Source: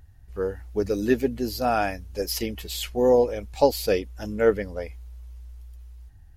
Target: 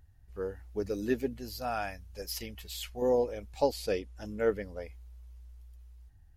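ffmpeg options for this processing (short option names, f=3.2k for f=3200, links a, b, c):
-filter_complex "[0:a]asettb=1/sr,asplit=3[a][b][c];[a]atrim=end=1.334[d];[b]atrim=start=1.33:end=3.02,asetpts=PTS-STARTPTS,afade=t=in:d=0.004:c=qsin,afade=t=out:st=1.686:d=0.004:c=qsin,equalizer=f=330:t=o:w=1.4:g=-8.5[e];[c]atrim=start=3.016[f];[d][e]acrossfade=d=0.004:c1=hsin:c2=qsin[g];[g][f]acrossfade=d=0.004:c1=qsin:c2=hsin,asettb=1/sr,asplit=3[h][i][j];[h]atrim=end=3.724[k];[i]atrim=start=3.72:end=4.26,asetpts=PTS-STARTPTS,afade=t=in:d=0.004:c=qsin,afade=t=out:st=0.536:d=0.004:c=qsin,lowpass=f=11k:w=0.5412,lowpass=f=11k:w=1.3066[l];[j]atrim=start=4.256[m];[k][l]acrossfade=d=0.004:c1=hsin:c2=qsin[n];[n][m]acrossfade=d=0.004:c1=qsin:c2=hsin,volume=-8.5dB"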